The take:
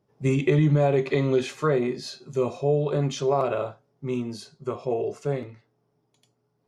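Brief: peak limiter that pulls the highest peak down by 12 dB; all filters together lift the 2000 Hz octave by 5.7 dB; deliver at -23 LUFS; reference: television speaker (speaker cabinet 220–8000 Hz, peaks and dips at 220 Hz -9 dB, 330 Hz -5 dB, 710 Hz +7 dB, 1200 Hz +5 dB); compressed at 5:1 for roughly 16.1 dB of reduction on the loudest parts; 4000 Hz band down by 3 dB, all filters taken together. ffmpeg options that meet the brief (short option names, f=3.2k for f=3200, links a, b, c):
-af "equalizer=f=2k:t=o:g=8,equalizer=f=4k:t=o:g=-6.5,acompressor=threshold=-35dB:ratio=5,alimiter=level_in=9.5dB:limit=-24dB:level=0:latency=1,volume=-9.5dB,highpass=f=220:w=0.5412,highpass=f=220:w=1.3066,equalizer=f=220:t=q:w=4:g=-9,equalizer=f=330:t=q:w=4:g=-5,equalizer=f=710:t=q:w=4:g=7,equalizer=f=1.2k:t=q:w=4:g=5,lowpass=f=8k:w=0.5412,lowpass=f=8k:w=1.3066,volume=21dB"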